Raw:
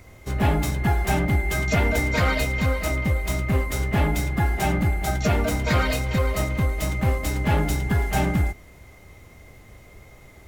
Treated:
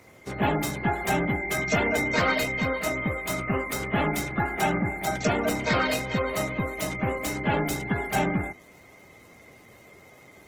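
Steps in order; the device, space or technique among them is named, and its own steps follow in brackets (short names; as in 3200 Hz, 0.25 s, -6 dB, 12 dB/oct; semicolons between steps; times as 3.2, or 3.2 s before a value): 3.01–4.8 dynamic EQ 1300 Hz, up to +5 dB, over -50 dBFS, Q 5; noise-suppressed video call (HPF 180 Hz 12 dB/oct; spectral gate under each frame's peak -30 dB strong; Opus 16 kbps 48000 Hz)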